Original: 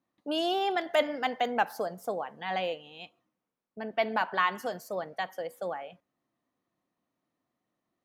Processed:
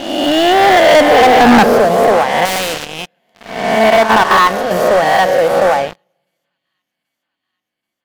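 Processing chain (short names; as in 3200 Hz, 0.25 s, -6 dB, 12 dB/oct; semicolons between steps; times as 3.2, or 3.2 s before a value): spectral swells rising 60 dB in 1.23 s; 1.09–1.63 resonant high-pass 490 Hz -> 200 Hz, resonance Q 7.8; 3.9–4.71 level quantiser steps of 13 dB; high shelf 3400 Hz -9.5 dB; thin delay 0.781 s, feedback 70%, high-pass 4300 Hz, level -17.5 dB; on a send at -17 dB: reverb RT60 1.5 s, pre-delay 4 ms; on the sum: sample leveller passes 5; AGC gain up to 4 dB; 2.45–2.85 spectral compressor 2:1; gain +1 dB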